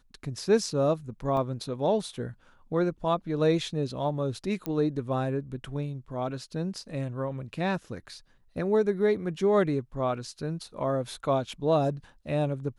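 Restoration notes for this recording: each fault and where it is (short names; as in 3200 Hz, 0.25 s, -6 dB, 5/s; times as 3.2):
1.37 gap 2.2 ms
4.66 pop -18 dBFS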